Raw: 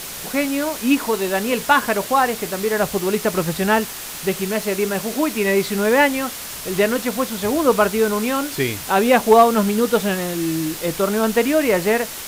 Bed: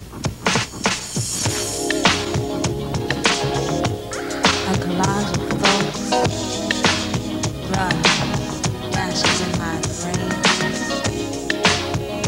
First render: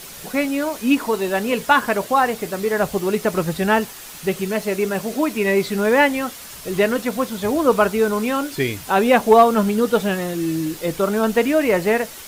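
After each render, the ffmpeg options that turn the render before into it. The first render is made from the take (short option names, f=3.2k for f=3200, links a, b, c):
-af "afftdn=nr=7:nf=-32"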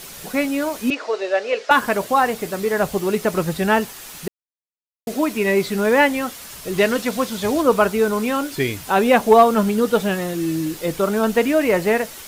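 -filter_complex "[0:a]asettb=1/sr,asplit=3[a][b][c];[a]atrim=end=0.904[d];[b]atrim=start=0.9:end=1.71,asetpts=PTS-STARTPTS,afade=t=in:d=0.004:c=qsin,afade=t=out:st=0.806:d=0.004:c=qsin,highpass=f=420:w=0.5412,highpass=f=420:w=1.3066,equalizer=f=580:t=q:w=4:g=6,equalizer=f=960:t=q:w=4:g=-9,equalizer=f=3.3k:t=q:w=4:g=-4,lowpass=f=5.6k:w=0.5412,lowpass=f=5.6k:w=1.3066[e];[c]atrim=start=1.706[f];[d][e]acrossfade=d=0.004:c1=hsin:c2=qsin[g];[g][f]acrossfade=d=0.004:c1=qsin:c2=hsin,asettb=1/sr,asplit=3[h][i][j];[h]atrim=end=6.784[k];[i]atrim=start=6.78:end=7.62,asetpts=PTS-STARTPTS,afade=t=in:d=0.004:c=qsin,afade=t=out:st=0.836:d=0.004:c=qsin,equalizer=f=4.5k:t=o:w=2.1:g=4.5[l];[j]atrim=start=7.616[m];[k][l]acrossfade=d=0.004:c1=hsin:c2=qsin[n];[n][m]acrossfade=d=0.004:c1=qsin:c2=hsin,asplit=3[o][p][q];[o]atrim=end=4.28,asetpts=PTS-STARTPTS,afade=t=out:st=4.276:d=0.004:c=hsin[r];[p]atrim=start=4.28:end=5.07,asetpts=PTS-STARTPTS,volume=0[s];[q]atrim=start=5.07,asetpts=PTS-STARTPTS,afade=t=in:d=0.004:c=hsin[t];[r][s][t]concat=n=3:v=0:a=1"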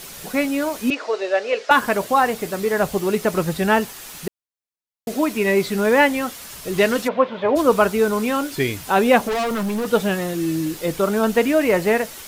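-filter_complex "[0:a]asplit=3[a][b][c];[a]afade=t=out:st=7.07:d=0.02[d];[b]highpass=160,equalizer=f=210:t=q:w=4:g=-6,equalizer=f=570:t=q:w=4:g=10,equalizer=f=980:t=q:w=4:g=7,lowpass=f=2.8k:w=0.5412,lowpass=f=2.8k:w=1.3066,afade=t=in:st=7.07:d=0.02,afade=t=out:st=7.55:d=0.02[e];[c]afade=t=in:st=7.55:d=0.02[f];[d][e][f]amix=inputs=3:normalize=0,asettb=1/sr,asplit=3[g][h][i];[g]atrim=end=9.274[j];[h]atrim=start=9.27:end=9.87,asetpts=PTS-STARTPTS,afade=t=in:d=0.004:c=qsin,afade=t=out:st=0.596:d=0.004:c=qsin,asoftclip=type=hard:threshold=-20.5dB[k];[i]atrim=start=9.866[l];[j][k]acrossfade=d=0.004:c1=hsin:c2=qsin[m];[m][l]acrossfade=d=0.004:c1=qsin:c2=hsin"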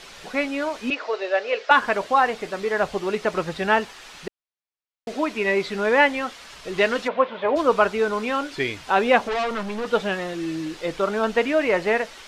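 -af "lowpass=4.3k,equalizer=f=130:t=o:w=2.9:g=-10"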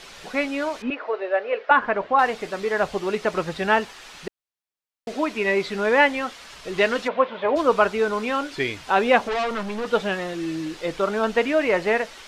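-filter_complex "[0:a]asettb=1/sr,asplit=3[a][b][c];[a]atrim=end=0.824[d];[b]atrim=start=0.82:end=2.19,asetpts=PTS-STARTPTS,afade=t=in:d=0.004:c=qsin,afade=t=out:st=1.366:d=0.004:c=qsin,lowpass=2k[e];[c]atrim=start=2.186[f];[d][e]acrossfade=d=0.004:c1=hsin:c2=qsin[g];[g][f]acrossfade=d=0.004:c1=qsin:c2=hsin"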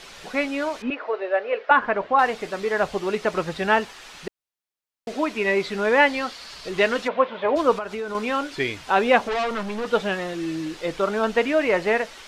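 -filter_complex "[0:a]asettb=1/sr,asplit=3[a][b][c];[a]atrim=end=6.074[d];[b]atrim=start=6.07:end=6.69,asetpts=PTS-STARTPTS,afade=t=in:d=0.004:c=qsin,afade=t=out:st=0.616:d=0.004:c=qsin,equalizer=f=4.5k:t=o:w=0.35:g=10[e];[c]atrim=start=6.686[f];[d][e]acrossfade=d=0.004:c1=hsin:c2=qsin[g];[g][f]acrossfade=d=0.004:c1=qsin:c2=hsin,asettb=1/sr,asplit=3[h][i][j];[h]atrim=end=7.744[k];[i]atrim=start=7.74:end=8.15,asetpts=PTS-STARTPTS,afade=t=in:d=0.004:c=qsin,afade=t=out:st=0.406:d=0.004:c=qsin,acompressor=threshold=-26dB:ratio=6:attack=3.2:release=140:knee=1:detection=peak[l];[j]atrim=start=8.146[m];[k][l]acrossfade=d=0.004:c1=hsin:c2=qsin[n];[n][m]acrossfade=d=0.004:c1=qsin:c2=hsin"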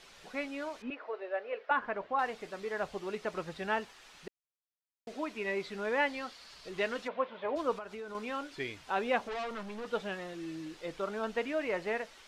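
-af "volume=-13dB"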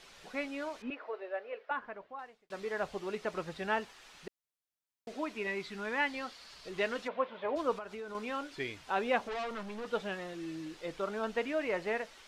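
-filter_complex "[0:a]asettb=1/sr,asplit=3[a][b][c];[a]atrim=end=5.474[d];[b]atrim=start=5.47:end=6.14,asetpts=PTS-STARTPTS,afade=t=in:d=0.004:c=qsin,afade=t=out:st=0.666:d=0.004:c=qsin,equalizer=f=530:t=o:w=0.77:g=-9[e];[c]atrim=start=6.136[f];[d][e]acrossfade=d=0.004:c1=hsin:c2=qsin[g];[g][f]acrossfade=d=0.004:c1=qsin:c2=hsin,asplit=2[h][i];[h]atrim=end=2.5,asetpts=PTS-STARTPTS,afade=t=out:st=0.93:d=1.57[j];[i]atrim=start=2.5,asetpts=PTS-STARTPTS,afade=t=in:d=0.004:c=hsin[k];[j][k]concat=n=2:v=0:a=1"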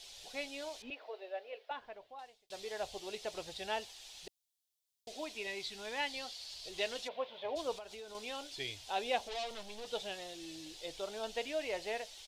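-af "firequalizer=gain_entry='entry(110,0);entry(170,-14);entry(330,-8);entry(740,-1);entry(1200,-14);entry(3400,7)':delay=0.05:min_phase=1"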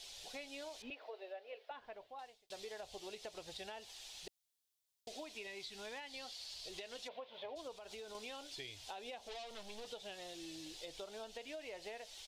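-af "alimiter=level_in=6.5dB:limit=-24dB:level=0:latency=1:release=168,volume=-6.5dB,acompressor=threshold=-45dB:ratio=6"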